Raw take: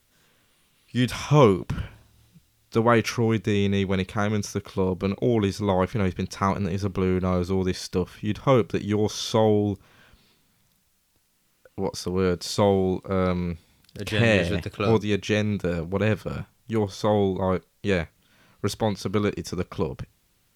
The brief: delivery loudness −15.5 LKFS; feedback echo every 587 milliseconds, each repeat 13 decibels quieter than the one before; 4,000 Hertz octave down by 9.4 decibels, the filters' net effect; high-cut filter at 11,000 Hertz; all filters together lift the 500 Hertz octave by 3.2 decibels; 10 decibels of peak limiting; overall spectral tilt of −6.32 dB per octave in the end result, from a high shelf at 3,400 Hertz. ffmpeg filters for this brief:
ffmpeg -i in.wav -af "lowpass=11000,equalizer=frequency=500:width_type=o:gain=4,highshelf=frequency=3400:gain=-5.5,equalizer=frequency=4000:width_type=o:gain=-8.5,alimiter=limit=-13.5dB:level=0:latency=1,aecho=1:1:587|1174|1761:0.224|0.0493|0.0108,volume=10dB" out.wav

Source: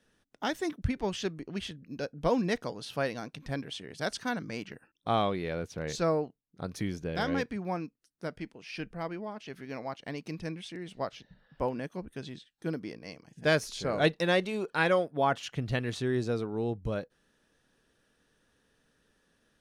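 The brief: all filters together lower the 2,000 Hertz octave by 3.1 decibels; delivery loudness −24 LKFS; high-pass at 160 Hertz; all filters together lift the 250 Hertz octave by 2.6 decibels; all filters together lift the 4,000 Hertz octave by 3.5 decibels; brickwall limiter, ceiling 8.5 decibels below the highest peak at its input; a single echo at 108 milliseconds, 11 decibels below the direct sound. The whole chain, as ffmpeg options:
ffmpeg -i in.wav -af "highpass=160,equalizer=frequency=250:width_type=o:gain=4.5,equalizer=frequency=2000:width_type=o:gain=-5.5,equalizer=frequency=4000:width_type=o:gain=6,alimiter=limit=-19.5dB:level=0:latency=1,aecho=1:1:108:0.282,volume=9.5dB" out.wav

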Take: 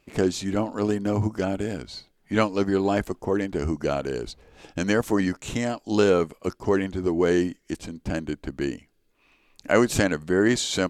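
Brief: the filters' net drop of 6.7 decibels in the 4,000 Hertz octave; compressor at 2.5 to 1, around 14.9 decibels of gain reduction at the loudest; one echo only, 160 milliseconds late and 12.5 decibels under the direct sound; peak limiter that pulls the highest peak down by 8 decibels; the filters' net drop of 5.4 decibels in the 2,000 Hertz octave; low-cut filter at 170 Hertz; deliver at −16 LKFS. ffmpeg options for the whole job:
ffmpeg -i in.wav -af "highpass=170,equalizer=frequency=2000:width_type=o:gain=-6,equalizer=frequency=4000:width_type=o:gain=-6.5,acompressor=threshold=-39dB:ratio=2.5,alimiter=level_in=4.5dB:limit=-24dB:level=0:latency=1,volume=-4.5dB,aecho=1:1:160:0.237,volume=24.5dB" out.wav

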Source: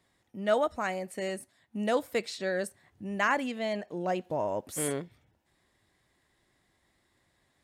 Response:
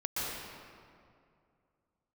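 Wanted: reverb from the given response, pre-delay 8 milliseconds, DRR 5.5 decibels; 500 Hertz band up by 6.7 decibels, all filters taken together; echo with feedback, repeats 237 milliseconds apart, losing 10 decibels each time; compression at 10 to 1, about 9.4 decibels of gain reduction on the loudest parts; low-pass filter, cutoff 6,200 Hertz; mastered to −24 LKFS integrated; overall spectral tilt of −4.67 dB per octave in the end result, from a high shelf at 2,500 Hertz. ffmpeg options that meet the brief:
-filter_complex "[0:a]lowpass=6200,equalizer=frequency=500:width_type=o:gain=8,highshelf=frequency=2500:gain=4.5,acompressor=threshold=-25dB:ratio=10,aecho=1:1:237|474|711|948:0.316|0.101|0.0324|0.0104,asplit=2[link_01][link_02];[1:a]atrim=start_sample=2205,adelay=8[link_03];[link_02][link_03]afir=irnorm=-1:irlink=0,volume=-12dB[link_04];[link_01][link_04]amix=inputs=2:normalize=0,volume=6.5dB"

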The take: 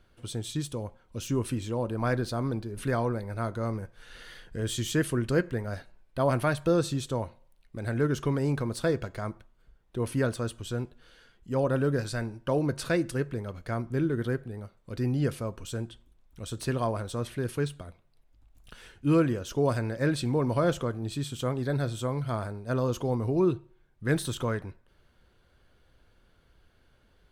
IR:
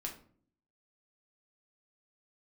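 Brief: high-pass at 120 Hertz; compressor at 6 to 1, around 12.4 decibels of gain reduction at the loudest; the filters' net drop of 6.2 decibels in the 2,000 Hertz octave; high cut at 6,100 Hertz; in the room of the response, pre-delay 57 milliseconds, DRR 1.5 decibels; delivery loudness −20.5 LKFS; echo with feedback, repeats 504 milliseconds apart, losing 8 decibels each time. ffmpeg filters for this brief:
-filter_complex "[0:a]highpass=120,lowpass=6100,equalizer=frequency=2000:width_type=o:gain=-9,acompressor=threshold=-34dB:ratio=6,aecho=1:1:504|1008|1512|2016|2520:0.398|0.159|0.0637|0.0255|0.0102,asplit=2[link_01][link_02];[1:a]atrim=start_sample=2205,adelay=57[link_03];[link_02][link_03]afir=irnorm=-1:irlink=0,volume=-0.5dB[link_04];[link_01][link_04]amix=inputs=2:normalize=0,volume=16dB"

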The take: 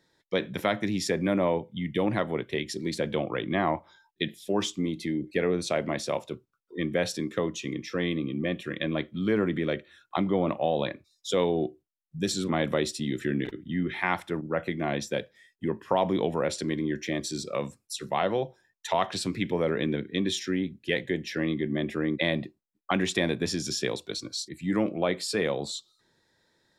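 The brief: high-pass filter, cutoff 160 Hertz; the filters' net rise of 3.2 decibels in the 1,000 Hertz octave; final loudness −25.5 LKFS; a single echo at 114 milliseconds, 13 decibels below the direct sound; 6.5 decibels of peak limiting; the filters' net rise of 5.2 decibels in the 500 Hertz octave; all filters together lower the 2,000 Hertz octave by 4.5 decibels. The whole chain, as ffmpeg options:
ffmpeg -i in.wav -af "highpass=160,equalizer=frequency=500:width_type=o:gain=6,equalizer=frequency=1000:width_type=o:gain=3,equalizer=frequency=2000:width_type=o:gain=-6.5,alimiter=limit=-14dB:level=0:latency=1,aecho=1:1:114:0.224,volume=2dB" out.wav

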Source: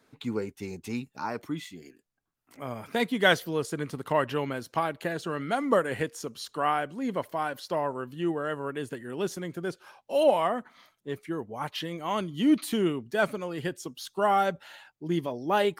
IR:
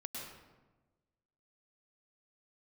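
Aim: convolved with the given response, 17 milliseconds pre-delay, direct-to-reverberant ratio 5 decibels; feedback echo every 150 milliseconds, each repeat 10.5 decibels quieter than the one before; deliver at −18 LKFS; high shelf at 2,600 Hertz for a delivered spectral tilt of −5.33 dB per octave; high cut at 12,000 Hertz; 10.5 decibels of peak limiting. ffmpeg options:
-filter_complex "[0:a]lowpass=12000,highshelf=frequency=2600:gain=-8.5,alimiter=limit=-20dB:level=0:latency=1,aecho=1:1:150|300|450:0.299|0.0896|0.0269,asplit=2[link_01][link_02];[1:a]atrim=start_sample=2205,adelay=17[link_03];[link_02][link_03]afir=irnorm=-1:irlink=0,volume=-4dB[link_04];[link_01][link_04]amix=inputs=2:normalize=0,volume=13dB"

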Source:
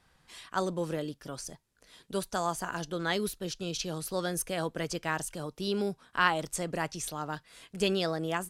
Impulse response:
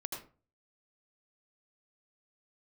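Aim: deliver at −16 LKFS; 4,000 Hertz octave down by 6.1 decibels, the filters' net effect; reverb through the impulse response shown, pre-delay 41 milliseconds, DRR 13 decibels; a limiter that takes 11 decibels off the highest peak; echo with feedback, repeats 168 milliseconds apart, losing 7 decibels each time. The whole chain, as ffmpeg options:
-filter_complex "[0:a]equalizer=frequency=4000:width_type=o:gain=-8.5,alimiter=limit=-22dB:level=0:latency=1,aecho=1:1:168|336|504|672|840:0.447|0.201|0.0905|0.0407|0.0183,asplit=2[link_01][link_02];[1:a]atrim=start_sample=2205,adelay=41[link_03];[link_02][link_03]afir=irnorm=-1:irlink=0,volume=-13.5dB[link_04];[link_01][link_04]amix=inputs=2:normalize=0,volume=18.5dB"

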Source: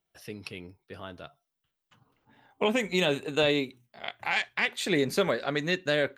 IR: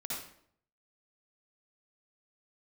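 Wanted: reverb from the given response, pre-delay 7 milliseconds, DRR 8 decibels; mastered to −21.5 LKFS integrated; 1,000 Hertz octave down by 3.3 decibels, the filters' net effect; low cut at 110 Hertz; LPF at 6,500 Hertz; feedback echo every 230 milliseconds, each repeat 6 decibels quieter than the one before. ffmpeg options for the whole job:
-filter_complex "[0:a]highpass=110,lowpass=6500,equalizer=frequency=1000:width_type=o:gain=-4.5,aecho=1:1:230|460|690|920|1150|1380:0.501|0.251|0.125|0.0626|0.0313|0.0157,asplit=2[link_01][link_02];[1:a]atrim=start_sample=2205,adelay=7[link_03];[link_02][link_03]afir=irnorm=-1:irlink=0,volume=-9.5dB[link_04];[link_01][link_04]amix=inputs=2:normalize=0,volume=5.5dB"

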